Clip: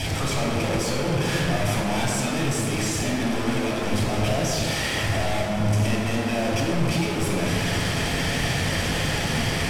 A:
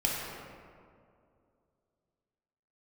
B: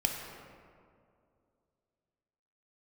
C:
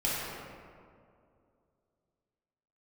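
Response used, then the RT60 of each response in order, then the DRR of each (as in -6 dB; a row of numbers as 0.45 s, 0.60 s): A; 2.4 s, 2.4 s, 2.4 s; -4.0 dB, 1.5 dB, -8.5 dB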